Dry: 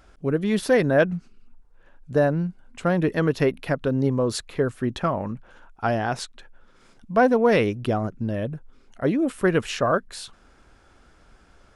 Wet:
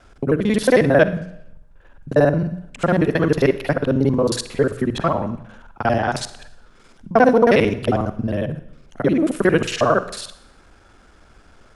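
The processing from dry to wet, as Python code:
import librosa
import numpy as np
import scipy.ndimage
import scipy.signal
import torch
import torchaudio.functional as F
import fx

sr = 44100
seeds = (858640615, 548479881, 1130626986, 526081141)

y = fx.local_reverse(x, sr, ms=45.0)
y = fx.hum_notches(y, sr, base_hz=60, count=3)
y = fx.rev_schroeder(y, sr, rt60_s=0.78, comb_ms=38, drr_db=13.5)
y = F.gain(torch.from_numpy(y), 5.0).numpy()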